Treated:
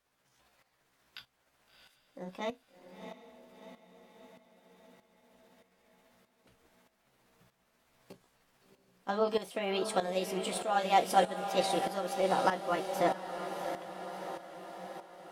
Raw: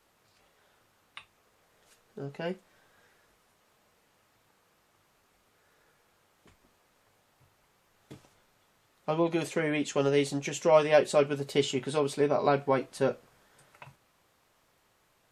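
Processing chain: delay-line pitch shifter +4.5 st; on a send: diffused feedback echo 0.695 s, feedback 61%, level -8 dB; on the sum: tremolo saw up 1.6 Hz, depth 70%

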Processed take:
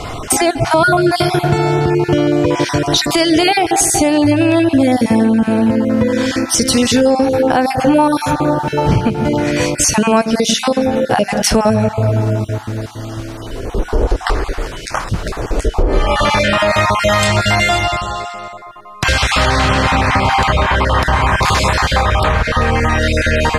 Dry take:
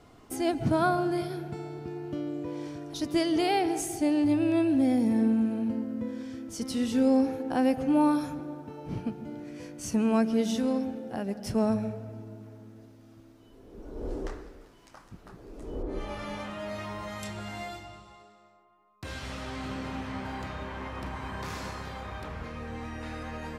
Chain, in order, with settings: random spectral dropouts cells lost 22%; LPF 11000 Hz 12 dB/oct; bell 260 Hz -10 dB 1.5 oct; compressor 6:1, threshold -43 dBFS, peak gain reduction 16.5 dB; on a send at -21 dB: reverb RT60 0.30 s, pre-delay 3 ms; on the sum: maximiser +34.5 dB; gain -1 dB

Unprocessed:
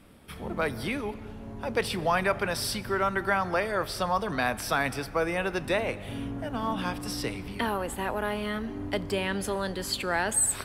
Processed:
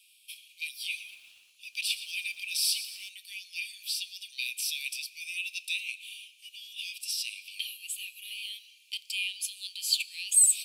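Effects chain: Chebyshev high-pass 2400 Hz, order 8; reverb RT60 0.10 s, pre-delay 7 ms, DRR 14 dB; 0.84–3.09 lo-fi delay 0.117 s, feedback 55%, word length 10-bit, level -12.5 dB; gain +5 dB

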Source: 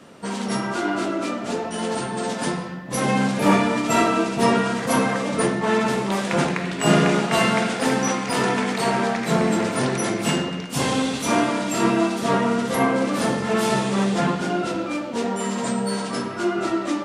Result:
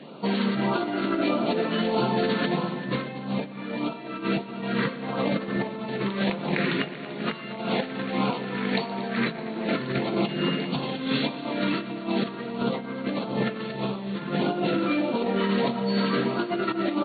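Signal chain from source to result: FFT band-pass 120–4500 Hz; notches 60/120/180/240 Hz; negative-ratio compressor -26 dBFS, ratio -0.5; LFO notch sine 1.6 Hz 710–1900 Hz; tapped delay 0.122/0.232/0.39 s -18.5/-15.5/-15.5 dB

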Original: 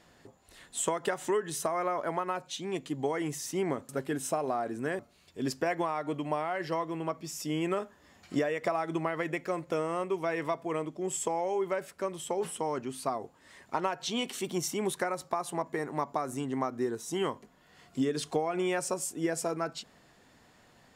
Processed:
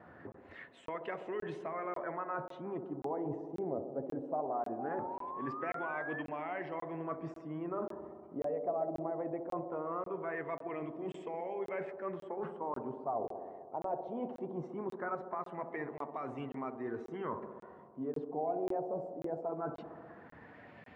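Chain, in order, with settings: bin magnitudes rounded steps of 15 dB; HPF 69 Hz 24 dB/oct; high shelf 3000 Hz -9.5 dB; reverse; compressor 5:1, threshold -45 dBFS, peak gain reduction 18.5 dB; reverse; vibrato 2 Hz 17 cents; LFO low-pass sine 0.2 Hz 690–2500 Hz; painted sound rise, 4.79–6.22, 770–1800 Hz -48 dBFS; on a send: band-limited delay 65 ms, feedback 79%, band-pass 410 Hz, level -7.5 dB; on the sum: crackling interface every 0.54 s, samples 1024, zero, from 0.32; gain +5 dB

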